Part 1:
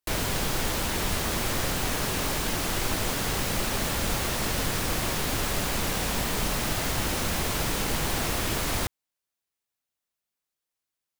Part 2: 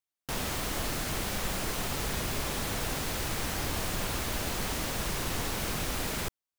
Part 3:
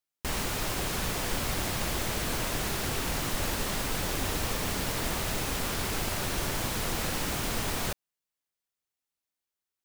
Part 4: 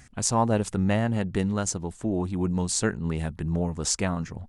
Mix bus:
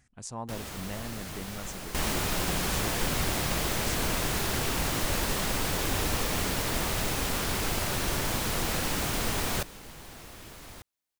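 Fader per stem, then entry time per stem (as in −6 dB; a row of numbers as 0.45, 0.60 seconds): −18.5, −7.0, +1.5, −15.0 decibels; 1.95, 0.20, 1.70, 0.00 seconds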